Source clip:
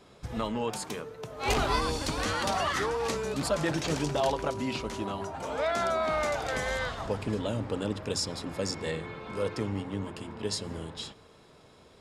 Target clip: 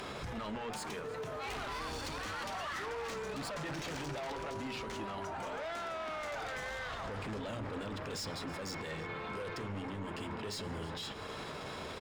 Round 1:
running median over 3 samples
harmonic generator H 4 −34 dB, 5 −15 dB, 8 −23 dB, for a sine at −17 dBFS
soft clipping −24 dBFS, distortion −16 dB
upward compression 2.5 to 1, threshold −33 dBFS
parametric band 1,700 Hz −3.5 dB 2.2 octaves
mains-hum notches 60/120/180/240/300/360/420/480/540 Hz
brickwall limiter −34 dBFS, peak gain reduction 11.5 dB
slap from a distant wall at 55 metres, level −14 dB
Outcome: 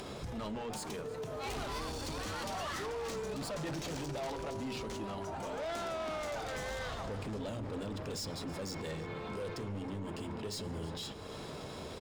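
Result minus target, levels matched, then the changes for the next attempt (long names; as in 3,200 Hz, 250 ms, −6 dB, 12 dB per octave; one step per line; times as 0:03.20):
2,000 Hz band −4.0 dB
change: parametric band 1,700 Hz +5.5 dB 2.2 octaves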